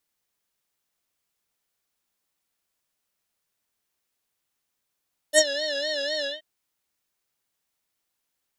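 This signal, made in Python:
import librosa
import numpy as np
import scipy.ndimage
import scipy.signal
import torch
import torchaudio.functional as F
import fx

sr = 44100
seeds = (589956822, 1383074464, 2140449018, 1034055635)

y = fx.sub_patch_vibrato(sr, seeds[0], note=74, wave='square', wave2='saw', interval_st=19, detune_cents=16, level2_db=-3, sub_db=-17, noise_db=-28.5, kind='lowpass', cutoff_hz=3000.0, q=6.5, env_oct=2.0, env_decay_s=0.1, env_sustain_pct=30, attack_ms=53.0, decay_s=0.05, sustain_db=-15.0, release_s=0.17, note_s=0.91, lfo_hz=4.0, vibrato_cents=99)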